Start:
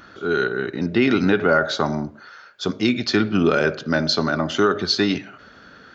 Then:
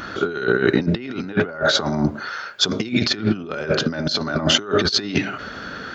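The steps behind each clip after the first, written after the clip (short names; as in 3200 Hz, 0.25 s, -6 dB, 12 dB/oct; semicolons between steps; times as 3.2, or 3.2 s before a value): in parallel at +0.5 dB: limiter -13.5 dBFS, peak gain reduction 7 dB; on the sum: negative-ratio compressor -21 dBFS, ratio -0.5; gain +1 dB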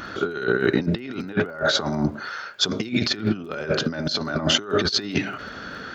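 crackle 19/s -38 dBFS; gain -3 dB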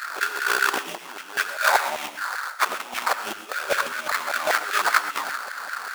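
sample-rate reducer 3000 Hz, jitter 20%; LFO high-pass saw down 5.1 Hz 690–1800 Hz; non-linear reverb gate 0.15 s rising, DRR 10.5 dB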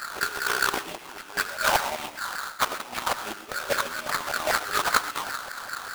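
half-waves squared off; gain -7.5 dB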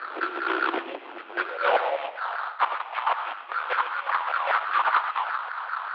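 high-pass sweep 410 Hz -> 1000 Hz, 1.22–2.84; soft clip -13 dBFS, distortion -13 dB; mistuned SSB -63 Hz 360–3300 Hz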